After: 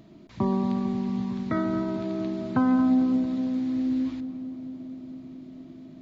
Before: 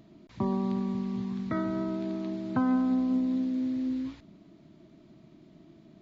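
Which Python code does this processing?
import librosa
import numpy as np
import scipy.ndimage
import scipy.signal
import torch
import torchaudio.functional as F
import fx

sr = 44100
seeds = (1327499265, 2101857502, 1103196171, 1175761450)

y = fx.echo_filtered(x, sr, ms=225, feedback_pct=83, hz=1300.0, wet_db=-11.0)
y = F.gain(torch.from_numpy(y), 4.0).numpy()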